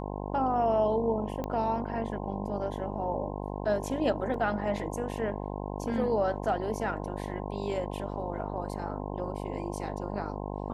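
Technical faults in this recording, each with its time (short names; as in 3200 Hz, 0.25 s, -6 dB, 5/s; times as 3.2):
buzz 50 Hz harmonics 21 -36 dBFS
1.44 pop -21 dBFS
4.34 gap 3.1 ms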